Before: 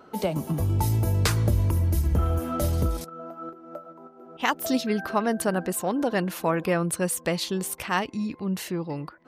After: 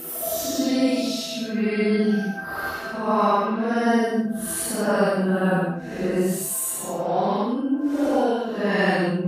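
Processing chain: Paulstretch 5.6×, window 0.10 s, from 4.59 s; trim +3 dB

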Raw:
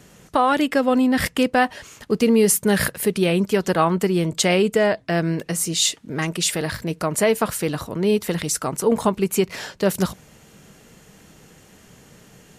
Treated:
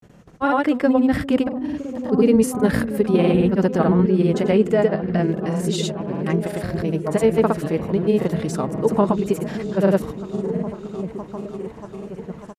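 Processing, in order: tilt shelf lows +5 dB, about 1.4 kHz; on a send: delay with an opening low-pass 557 ms, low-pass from 200 Hz, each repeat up 1 oct, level -6 dB; on the sum: granulator, pitch spread up and down by 0 st; treble shelf 4.7 kHz -7 dB; trim -1.5 dB

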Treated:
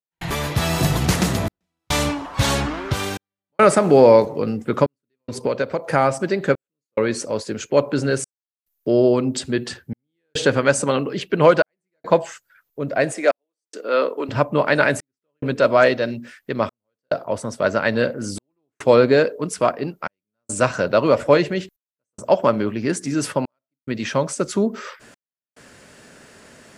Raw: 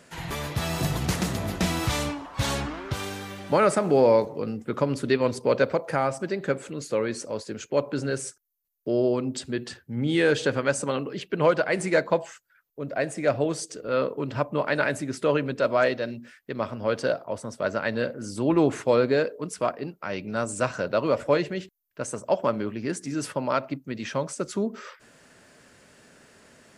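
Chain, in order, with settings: 5.18–5.91 s: compression 6:1, threshold -26 dBFS, peak gain reduction 10.5 dB; 13.12–14.29 s: Bessel high-pass 380 Hz, order 8; trance gate ".xxxxxx." 71 bpm -60 dB; trim +7.5 dB

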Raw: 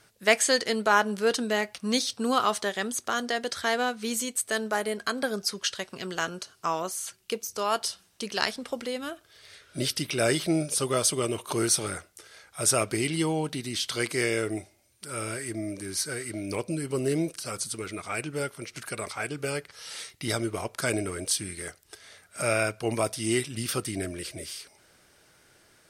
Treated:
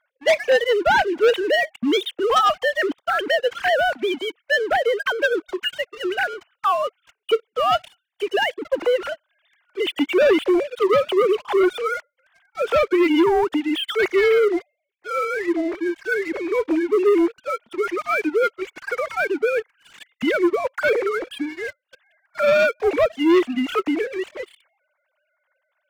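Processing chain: formants replaced by sine waves; waveshaping leveller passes 3

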